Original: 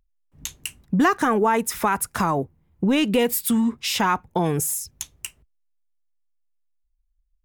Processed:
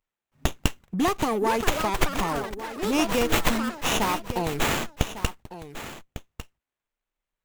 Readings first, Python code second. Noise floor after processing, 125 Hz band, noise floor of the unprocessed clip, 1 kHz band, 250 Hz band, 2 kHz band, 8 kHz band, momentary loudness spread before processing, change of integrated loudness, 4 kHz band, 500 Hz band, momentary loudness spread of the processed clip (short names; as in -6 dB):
under -85 dBFS, -2.0 dB, -70 dBFS, -3.5 dB, -5.5 dB, -1.0 dB, -5.0 dB, 16 LU, -4.0 dB, +0.5 dB, -2.5 dB, 16 LU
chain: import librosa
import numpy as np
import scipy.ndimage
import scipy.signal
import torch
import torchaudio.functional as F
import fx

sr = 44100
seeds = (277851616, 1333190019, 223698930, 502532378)

p1 = fx.tilt_eq(x, sr, slope=3.5)
p2 = fx.rider(p1, sr, range_db=5, speed_s=0.5)
p3 = p1 + (p2 * librosa.db_to_amplitude(-2.5))
p4 = fx.env_flanger(p3, sr, rest_ms=8.5, full_db=-17.0)
p5 = fx.echo_pitch(p4, sr, ms=759, semitones=6, count=3, db_per_echo=-6.0)
p6 = p5 + fx.echo_single(p5, sr, ms=1151, db=-13.0, dry=0)
p7 = fx.running_max(p6, sr, window=9)
y = p7 * librosa.db_to_amplitude(-5.5)